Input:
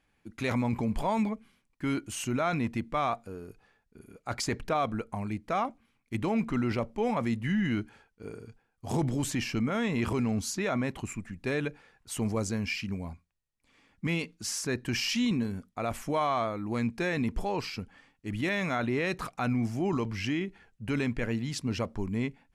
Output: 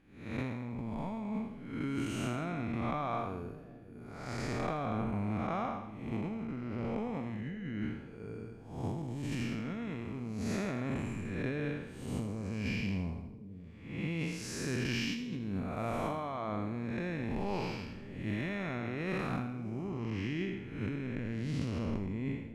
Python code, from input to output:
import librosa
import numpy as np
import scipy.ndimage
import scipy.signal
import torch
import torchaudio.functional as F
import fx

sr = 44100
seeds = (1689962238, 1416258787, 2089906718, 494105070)

y = fx.spec_blur(x, sr, span_ms=295.0)
y = fx.bass_treble(y, sr, bass_db=2, treble_db=-8)
y = fx.over_compress(y, sr, threshold_db=-36.0, ratio=-1.0)
y = fx.echo_split(y, sr, split_hz=530.0, low_ms=580, high_ms=82, feedback_pct=52, wet_db=-14)